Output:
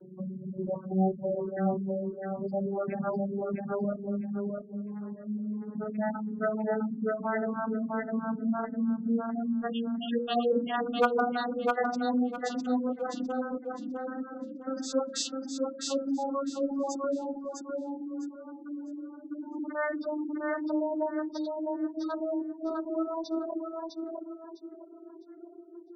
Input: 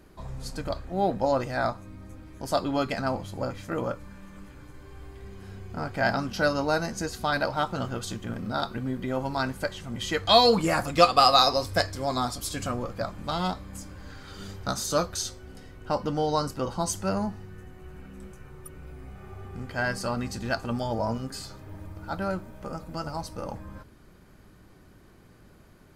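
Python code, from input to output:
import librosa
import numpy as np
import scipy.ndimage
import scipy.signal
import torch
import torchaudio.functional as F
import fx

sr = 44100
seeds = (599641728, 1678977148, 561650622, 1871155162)

p1 = fx.vocoder_glide(x, sr, note=54, semitones=11)
p2 = fx.hum_notches(p1, sr, base_hz=60, count=9)
p3 = fx.rotary(p2, sr, hz=0.9)
p4 = fx.spec_gate(p3, sr, threshold_db=-15, keep='strong')
p5 = fx.over_compress(p4, sr, threshold_db=-42.0, ratio=-1.0)
p6 = p4 + (p5 * 10.0 ** (2.0 / 20.0))
p7 = np.clip(p6, -10.0 ** (-15.5 / 20.0), 10.0 ** (-15.5 / 20.0))
p8 = fx.dereverb_blind(p7, sr, rt60_s=1.2)
y = p8 + fx.echo_feedback(p8, sr, ms=655, feedback_pct=25, wet_db=-3.5, dry=0)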